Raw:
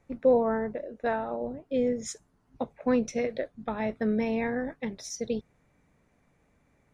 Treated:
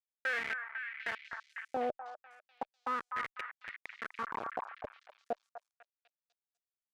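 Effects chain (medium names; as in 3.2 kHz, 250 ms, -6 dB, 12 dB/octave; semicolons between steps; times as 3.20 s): Schmitt trigger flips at -23 dBFS; wah-wah 0.35 Hz 560–2300 Hz, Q 5.3; repeats whose band climbs or falls 249 ms, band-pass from 1.2 kHz, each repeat 0.7 oct, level -3 dB; trim +12 dB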